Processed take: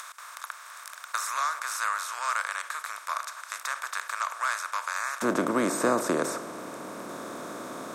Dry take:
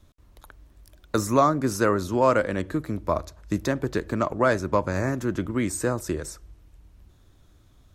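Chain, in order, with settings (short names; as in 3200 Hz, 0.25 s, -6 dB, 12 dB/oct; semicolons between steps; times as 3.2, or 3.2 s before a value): per-bin compression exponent 0.4; HPF 1200 Hz 24 dB/oct, from 5.22 s 180 Hz; upward compressor, threshold -34 dBFS; gain -5 dB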